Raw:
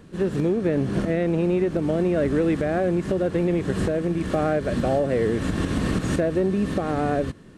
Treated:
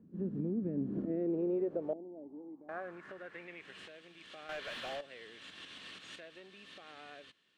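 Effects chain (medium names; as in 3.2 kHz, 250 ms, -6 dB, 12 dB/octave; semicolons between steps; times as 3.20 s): band-pass sweep 220 Hz -> 3.2 kHz, 0.72–3.95 s; 1.93–2.69 s: cascade formant filter u; 4.49–5.01 s: overdrive pedal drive 26 dB, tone 1.9 kHz, clips at -23.5 dBFS; trim -7.5 dB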